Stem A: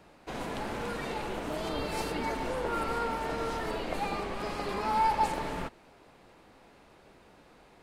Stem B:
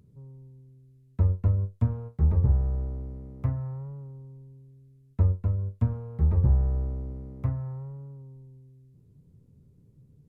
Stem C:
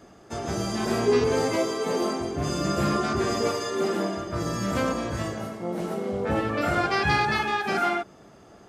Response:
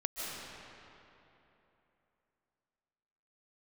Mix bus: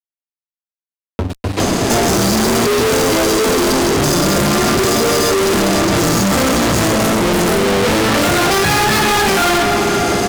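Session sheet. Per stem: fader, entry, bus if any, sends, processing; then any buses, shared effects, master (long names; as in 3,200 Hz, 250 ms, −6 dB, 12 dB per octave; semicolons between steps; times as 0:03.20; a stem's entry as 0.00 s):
−16.5 dB, 1.30 s, send −7.5 dB, low-shelf EQ 190 Hz +7 dB
−17.5 dB, 0.00 s, send −20 dB, comb filter 3.1 ms, depth 57%; downward compressor 1.5 to 1, threshold −48 dBFS, peak gain reduction 11.5 dB
+2.0 dB, 1.60 s, send −19 dB, bass and treble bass +1 dB, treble +7 dB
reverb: on, RT60 3.2 s, pre-delay 110 ms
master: parametric band 310 Hz +5.5 dB 2.2 octaves; fuzz pedal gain 41 dB, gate −50 dBFS; multiband upward and downward compressor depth 70%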